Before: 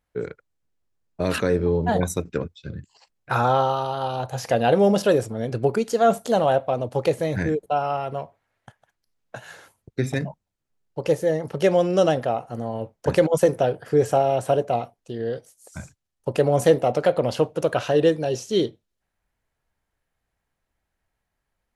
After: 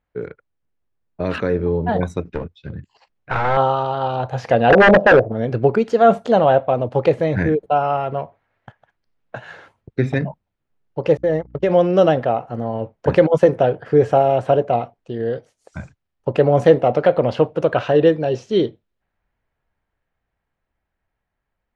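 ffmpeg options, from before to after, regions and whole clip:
-filter_complex "[0:a]asettb=1/sr,asplit=3[s0][s1][s2];[s0]atrim=end=2.274[s3];[s1]atrim=start=2.27:end=3.57,asetpts=PTS-STARTPTS,afade=t=in:d=0.004:c=qsin,afade=t=out:st=1.296:d=0.004:c=qsin,highshelf=f=9200:g=4.5,aeval=exprs='clip(val(0),-1,0.0355)':c=same[s4];[s2]atrim=start=3.566[s5];[s3][s4]acrossfade=d=0.004:c1=hsin:c2=qsin[s6];[s6][s5]acrossfade=d=0.004:c1=qsin:c2=hsin,asettb=1/sr,asplit=3[s7][s8][s9];[s7]atrim=end=4.704[s10];[s8]atrim=start=4.7:end=5.32,asetpts=PTS-STARTPTS,afade=t=in:d=0.004:c=qsin,afade=t=out:st=0.616:d=0.004:c=qsin,lowpass=f=650:t=q:w=4.5,aeval=exprs='0.335*(abs(mod(val(0)/0.335+3,4)-2)-1)':c=same[s11];[s9]atrim=start=5.316[s12];[s10][s11]acrossfade=d=0.004:c1=hsin:c2=qsin[s13];[s13][s12]acrossfade=d=0.004:c1=qsin:c2=hsin,asettb=1/sr,asplit=3[s14][s15][s16];[s14]atrim=end=11.174[s17];[s15]atrim=start=11.17:end=11.7,asetpts=PTS-STARTPTS,afade=t=in:d=0.004:c=qsin,afade=t=out:st=0.526:d=0.004:c=qsin,agate=range=0.01:threshold=0.0398:ratio=16:release=100:detection=peak,acompressor=threshold=0.126:ratio=4:attack=3.2:release=140:knee=1:detection=peak,aeval=exprs='val(0)+0.00316*(sin(2*PI*60*n/s)+sin(2*PI*2*60*n/s)/2+sin(2*PI*3*60*n/s)/3+sin(2*PI*4*60*n/s)/4+sin(2*PI*5*60*n/s)/5)':c=same[s18];[s16]atrim=start=11.696[s19];[s17][s18]acrossfade=d=0.004:c1=hsin:c2=qsin[s20];[s20][s19]acrossfade=d=0.004:c1=qsin:c2=hsin,lowpass=2800,dynaudnorm=f=550:g=11:m=2.11,volume=1.12"

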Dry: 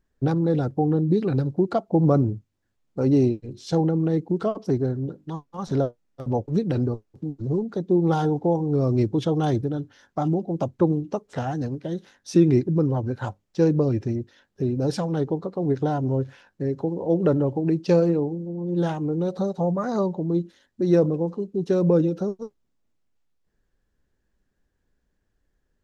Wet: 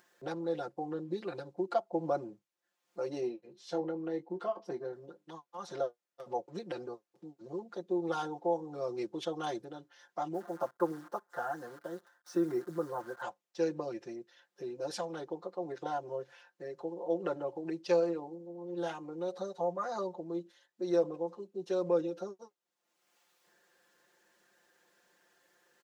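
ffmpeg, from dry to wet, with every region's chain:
-filter_complex "[0:a]asettb=1/sr,asplit=3[s0][s1][s2];[s0]atrim=end=3.204[s3];[s1]atrim=start=3.2:end=4.93,asetpts=PTS-STARTPTS,afade=t=in:d=0.004:c=qsin,afade=t=out:st=1.726:d=0.004:c=qsin,highshelf=f=3400:g=-9.5,asplit=2[s4][s5];[s5]adelay=21,volume=0.335[s6];[s4][s6]amix=inputs=2:normalize=0,atrim=end_sample=76293[s7];[s2]atrim=start=4.926[s8];[s3][s7]acrossfade=d=0.004:c1=hsin:c2=qsin[s9];[s9][s8]acrossfade=d=0.004:c1=qsin:c2=hsin,asettb=1/sr,asplit=3[s10][s11][s12];[s10]atrim=end=10.344[s13];[s11]atrim=start=10.34:end=13.22,asetpts=PTS-STARTPTS,afade=t=in:d=0.004:c=qsin,afade=t=out:st=2.876:d=0.004:c=qsin,acrusher=bits=8:dc=4:mix=0:aa=0.000001,highshelf=f=1900:t=q:w=3:g=-8[s14];[s12]atrim=start=13.216[s15];[s13][s14]acrossfade=d=0.004:c1=hsin:c2=qsin[s16];[s16][s15]acrossfade=d=0.004:c1=qsin:c2=hsin,highpass=570,aecho=1:1:5.7:0.95,acompressor=mode=upward:threshold=0.00631:ratio=2.5,volume=0.376"

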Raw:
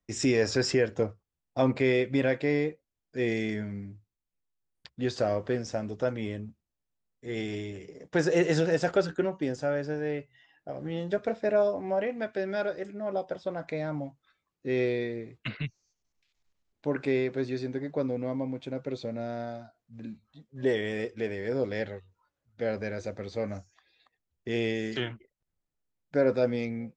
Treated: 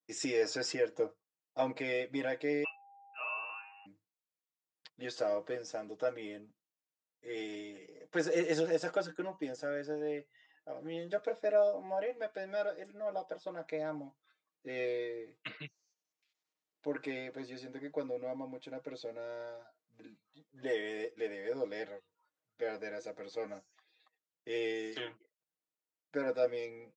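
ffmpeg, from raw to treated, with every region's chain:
-filter_complex "[0:a]asettb=1/sr,asplit=3[s0][s1][s2];[s0]atrim=end=2.644[s3];[s1]atrim=start=2.64:end=3.86,asetpts=PTS-STARTPTS,afade=t=in:d=0.004:c=qsin,afade=t=out:st=1.216:d=0.004:c=qsin,highpass=f=410:w=0.5412,highpass=f=410:w=1.3066,aeval=exprs='val(0)+0.00251*sin(2*PI*2300*n/s)':c=same,lowpass=f=2600:t=q:w=0.5098,lowpass=f=2600:t=q:w=0.6013,lowpass=f=2600:t=q:w=0.9,lowpass=f=2600:t=q:w=2.563,afreqshift=-3100[s4];[s2]atrim=start=3.856[s5];[s3][s4]acrossfade=d=0.004:c1=hsin:c2=qsin[s6];[s6][s5]acrossfade=d=0.004:c1=qsin:c2=hsin,highpass=330,adynamicequalizer=threshold=0.00447:dfrequency=2100:dqfactor=0.93:tfrequency=2100:tqfactor=0.93:attack=5:release=100:ratio=0.375:range=2:mode=cutabove:tftype=bell,aecho=1:1:6.4:0.83,volume=0.422"

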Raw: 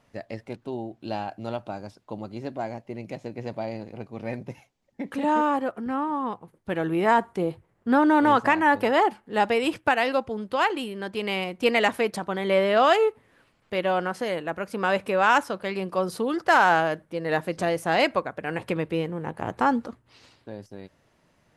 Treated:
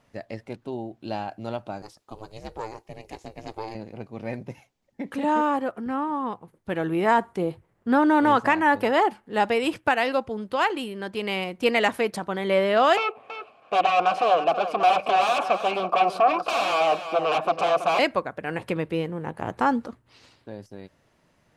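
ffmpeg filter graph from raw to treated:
-filter_complex "[0:a]asettb=1/sr,asplit=3[s0][s1][s2];[s0]atrim=end=1.824[s3];[s1]atrim=start=1.82:end=3.75,asetpts=PTS-STARTPTS,afade=t=in:d=0.004:c=qsin,afade=t=out:st=1.926:d=0.004:c=qsin,bass=f=250:g=-8,treble=f=4000:g=9,aeval=exprs='val(0)*sin(2*PI*220*n/s)':c=same[s4];[s2]atrim=start=3.746[s5];[s3][s4]acrossfade=d=0.004:c1=hsin:c2=qsin[s6];[s6][s5]acrossfade=d=0.004:c1=qsin:c2=hsin,asettb=1/sr,asplit=3[s7][s8][s9];[s7]atrim=end=12.974[s10];[s8]atrim=start=12.97:end=17.99,asetpts=PTS-STARTPTS,afade=t=in:d=0.004:c=qsin,afade=t=out:st=5.016:d=0.004:c=qsin,aeval=exprs='0.447*sin(PI/2*10*val(0)/0.447)':c=same,asplit=3[s11][s12][s13];[s11]bandpass=f=730:t=q:w=8,volume=1[s14];[s12]bandpass=f=1090:t=q:w=8,volume=0.501[s15];[s13]bandpass=f=2440:t=q:w=8,volume=0.355[s16];[s14][s15][s16]amix=inputs=3:normalize=0,aecho=1:1:327:0.282,atrim=end_sample=221382[s17];[s9]atrim=start=17.986[s18];[s10][s17]acrossfade=d=0.004:c1=hsin:c2=qsin[s19];[s19][s18]acrossfade=d=0.004:c1=qsin:c2=hsin"

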